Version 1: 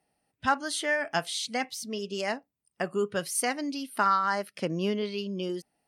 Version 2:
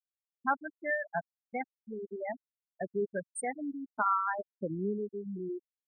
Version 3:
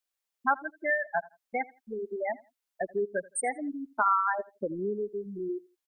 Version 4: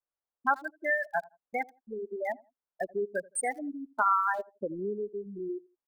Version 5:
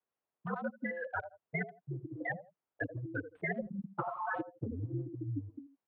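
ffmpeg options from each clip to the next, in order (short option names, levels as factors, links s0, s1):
-af "afftfilt=real='re*gte(hypot(re,im),0.141)':imag='im*gte(hypot(re,im),0.141)':win_size=1024:overlap=0.75,volume=0.631"
-filter_complex "[0:a]equalizer=f=140:w=0.9:g=-15,asplit=2[s0][s1];[s1]acompressor=threshold=0.01:ratio=6,volume=1.12[s2];[s0][s2]amix=inputs=2:normalize=0,aecho=1:1:83|166:0.0794|0.0191,volume=1.33"
-filter_complex "[0:a]lowshelf=f=490:g=-3,acrossover=split=1400[s0][s1];[s1]aeval=exprs='val(0)*gte(abs(val(0)),0.00266)':c=same[s2];[s0][s2]amix=inputs=2:normalize=0"
-af "highpass=f=160:t=q:w=0.5412,highpass=f=160:t=q:w=1.307,lowpass=f=3300:t=q:w=0.5176,lowpass=f=3300:t=q:w=0.7071,lowpass=f=3300:t=q:w=1.932,afreqshift=-81,highshelf=f=2400:g=-10,afftfilt=real='re*lt(hypot(re,im),0.126)':imag='im*lt(hypot(re,im),0.126)':win_size=1024:overlap=0.75,volume=2.11"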